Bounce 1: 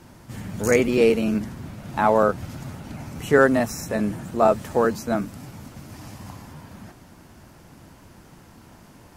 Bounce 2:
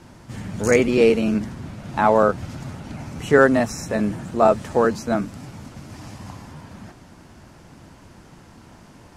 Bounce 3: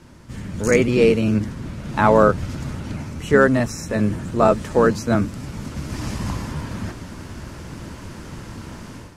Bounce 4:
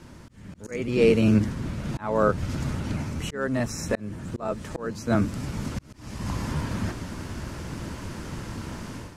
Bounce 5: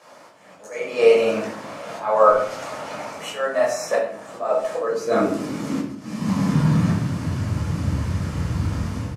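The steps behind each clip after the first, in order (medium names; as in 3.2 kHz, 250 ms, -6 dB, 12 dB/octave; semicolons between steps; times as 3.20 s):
low-pass 8.9 kHz 12 dB/octave; trim +2 dB
octave divider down 1 oct, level -4 dB; peaking EQ 750 Hz -7 dB 0.4 oct; level rider gain up to 11.5 dB; trim -1 dB
slow attack 596 ms
high-pass sweep 640 Hz -> 77 Hz, 4.37–7.91 s; speakerphone echo 110 ms, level -17 dB; simulated room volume 680 m³, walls furnished, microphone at 5.9 m; trim -3.5 dB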